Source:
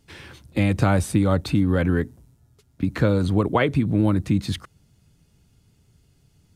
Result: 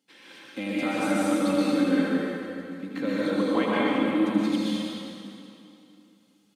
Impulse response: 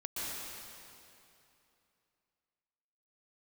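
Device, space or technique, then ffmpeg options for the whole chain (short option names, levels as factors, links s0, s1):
PA in a hall: -filter_complex "[0:a]highpass=f=200:w=0.5412,highpass=f=200:w=1.3066,equalizer=f=3300:t=o:w=0.96:g=4,aecho=1:1:3.8:0.5,aecho=1:1:80:0.422[s0];[1:a]atrim=start_sample=2205[s1];[s0][s1]afir=irnorm=-1:irlink=0,volume=0.422"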